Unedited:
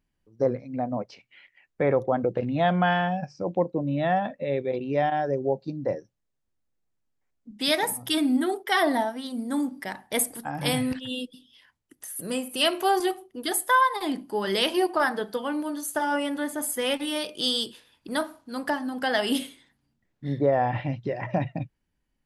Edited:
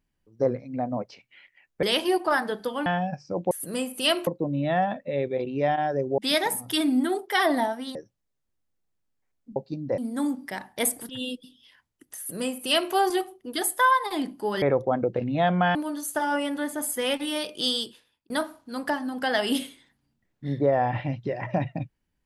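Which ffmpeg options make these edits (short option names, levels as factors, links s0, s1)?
-filter_complex "[0:a]asplit=13[s0][s1][s2][s3][s4][s5][s6][s7][s8][s9][s10][s11][s12];[s0]atrim=end=1.832[s13];[s1]atrim=start=14.518:end=15.552[s14];[s2]atrim=start=2.958:end=3.612[s15];[s3]atrim=start=12.068:end=12.832[s16];[s4]atrim=start=3.608:end=5.522[s17];[s5]atrim=start=7.548:end=9.322[s18];[s6]atrim=start=5.938:end=7.552[s19];[s7]atrim=start=5.518:end=5.942[s20];[s8]atrim=start=9.318:end=10.432[s21];[s9]atrim=start=10.988:end=14.522[s22];[s10]atrim=start=1.828:end=2.962[s23];[s11]atrim=start=15.548:end=18.1,asetpts=PTS-STARTPTS,afade=t=out:st=1.942:d=0.61[s24];[s12]atrim=start=18.1,asetpts=PTS-STARTPTS,afade=t=in:d=0.004:c=hsin[s25];[s13][s14]acrossfade=d=0.004:c1=hsin:c2=hsin[s26];[s26][s15]acrossfade=d=0.004:c1=hsin:c2=hsin[s27];[s27][s16]acrossfade=d=0.004:c1=hsin:c2=hsin[s28];[s28][s17]acrossfade=d=0.004:c1=hsin:c2=hsin[s29];[s29][s18]acrossfade=d=0.004:c1=hsin:c2=hsin[s30];[s30][s19]acrossfade=d=0.004:c1=hsin:c2=hsin[s31];[s31][s20]acrossfade=d=0.004:c1=hsin:c2=hsin[s32];[s32][s21]acrossfade=d=0.004:c1=hsin:c2=hsin[s33];[s33][s22]acrossfade=d=0.004:c1=hsin:c2=hsin[s34];[s34][s23]acrossfade=d=0.004:c1=hsin:c2=hsin[s35];[s24][s25]concat=n=2:v=0:a=1[s36];[s35][s36]acrossfade=d=0.004:c1=hsin:c2=hsin"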